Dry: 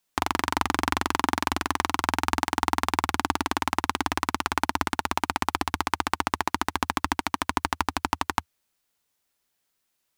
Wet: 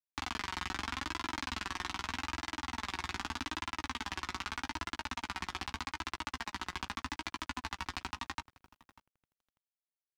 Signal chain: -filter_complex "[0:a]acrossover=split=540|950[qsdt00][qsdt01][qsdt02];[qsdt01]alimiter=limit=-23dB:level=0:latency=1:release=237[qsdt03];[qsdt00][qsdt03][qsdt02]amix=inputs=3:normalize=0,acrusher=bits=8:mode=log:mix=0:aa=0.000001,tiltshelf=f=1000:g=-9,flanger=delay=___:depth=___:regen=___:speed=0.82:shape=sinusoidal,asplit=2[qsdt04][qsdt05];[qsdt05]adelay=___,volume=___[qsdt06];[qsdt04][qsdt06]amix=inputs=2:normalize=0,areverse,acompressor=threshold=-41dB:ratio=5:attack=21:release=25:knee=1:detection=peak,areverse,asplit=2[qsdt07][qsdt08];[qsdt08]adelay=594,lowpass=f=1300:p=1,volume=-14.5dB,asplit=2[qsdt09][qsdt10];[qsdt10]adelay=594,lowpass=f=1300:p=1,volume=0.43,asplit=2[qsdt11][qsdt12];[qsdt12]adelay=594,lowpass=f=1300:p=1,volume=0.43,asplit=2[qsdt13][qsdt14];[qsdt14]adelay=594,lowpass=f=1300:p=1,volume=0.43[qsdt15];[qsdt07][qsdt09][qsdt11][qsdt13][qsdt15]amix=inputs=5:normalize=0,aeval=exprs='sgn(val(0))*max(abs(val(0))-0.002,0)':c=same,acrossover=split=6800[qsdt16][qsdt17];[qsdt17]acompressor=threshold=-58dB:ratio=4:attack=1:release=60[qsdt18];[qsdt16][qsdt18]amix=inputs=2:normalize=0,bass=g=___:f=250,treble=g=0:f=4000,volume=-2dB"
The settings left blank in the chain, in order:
2.9, 2.6, 64, 16, -14dB, 11